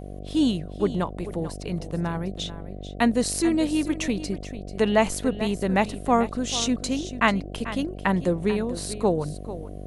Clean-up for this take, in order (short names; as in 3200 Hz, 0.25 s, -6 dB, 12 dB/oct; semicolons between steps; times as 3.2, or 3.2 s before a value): de-hum 48.8 Hz, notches 15; inverse comb 0.441 s -13.5 dB